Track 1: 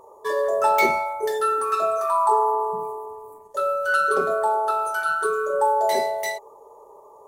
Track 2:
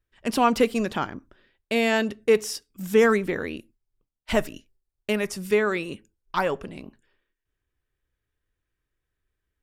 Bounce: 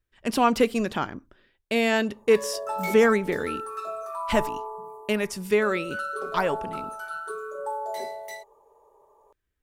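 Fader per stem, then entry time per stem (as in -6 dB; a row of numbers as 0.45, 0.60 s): -11.5, -0.5 dB; 2.05, 0.00 s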